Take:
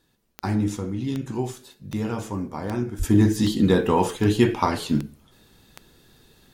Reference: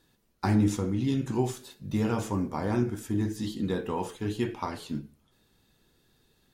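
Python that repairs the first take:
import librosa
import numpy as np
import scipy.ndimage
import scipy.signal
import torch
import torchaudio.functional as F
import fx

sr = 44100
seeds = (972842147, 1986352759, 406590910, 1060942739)

y = fx.fix_declick_ar(x, sr, threshold=10.0)
y = fx.fix_deplosive(y, sr, at_s=(2.98,))
y = fx.fix_level(y, sr, at_s=3.03, step_db=-11.5)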